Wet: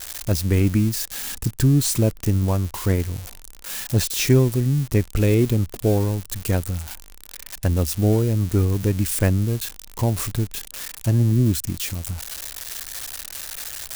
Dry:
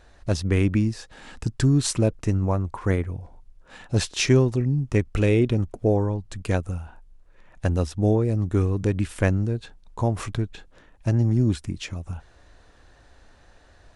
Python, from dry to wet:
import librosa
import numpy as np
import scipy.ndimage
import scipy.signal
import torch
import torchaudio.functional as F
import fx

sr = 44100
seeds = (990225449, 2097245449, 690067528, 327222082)

y = x + 0.5 * 10.0 ** (-17.5 / 20.0) * np.diff(np.sign(x), prepend=np.sign(x[:1]))
y = fx.low_shelf(y, sr, hz=400.0, db=5.5)
y = y * librosa.db_to_amplitude(-2.0)